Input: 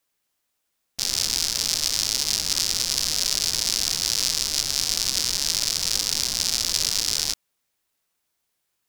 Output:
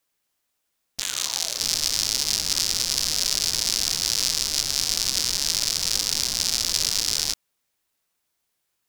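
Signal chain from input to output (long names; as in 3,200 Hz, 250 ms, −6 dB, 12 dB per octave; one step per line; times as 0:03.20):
0:01.00–0:01.59: ring modulation 1,900 Hz → 500 Hz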